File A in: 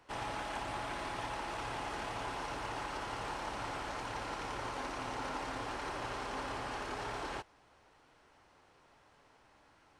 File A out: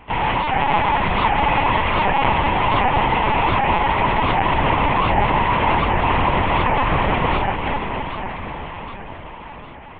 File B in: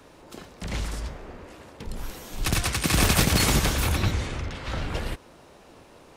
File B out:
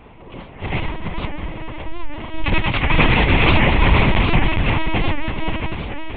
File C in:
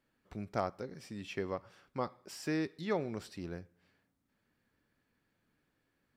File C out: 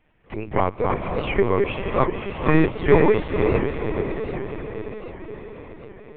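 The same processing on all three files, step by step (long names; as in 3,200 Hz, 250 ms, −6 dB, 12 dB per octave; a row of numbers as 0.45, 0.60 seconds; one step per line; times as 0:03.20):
delay that plays each chunk backwards 251 ms, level −3 dB
mains-hum notches 50/100/150/200/250/300/350 Hz
in parallel at −5 dB: gain into a clipping stage and back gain 23 dB
on the sum: high-frequency loss of the air 87 metres
phaser with its sweep stopped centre 950 Hz, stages 8
on a send: feedback delay with all-pass diffusion 517 ms, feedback 61%, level −6.5 dB
on the sum: linear-prediction vocoder at 8 kHz pitch kept
wow of a warped record 78 rpm, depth 160 cents
normalise the peak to −1.5 dBFS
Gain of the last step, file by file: +19.0, +8.0, +16.0 decibels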